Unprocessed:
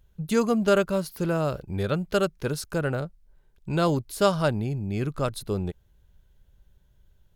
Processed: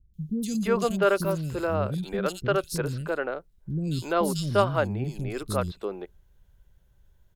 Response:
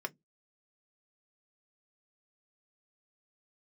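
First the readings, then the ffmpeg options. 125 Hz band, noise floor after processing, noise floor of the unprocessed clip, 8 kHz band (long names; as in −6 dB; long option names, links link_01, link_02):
−1.5 dB, −62 dBFS, −62 dBFS, +0.5 dB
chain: -filter_complex "[0:a]acrossover=split=280|3400[link_01][link_02][link_03];[link_03]adelay=140[link_04];[link_02]adelay=340[link_05];[link_01][link_05][link_04]amix=inputs=3:normalize=0,asplit=2[link_06][link_07];[1:a]atrim=start_sample=2205[link_08];[link_07][link_08]afir=irnorm=-1:irlink=0,volume=-18dB[link_09];[link_06][link_09]amix=inputs=2:normalize=0"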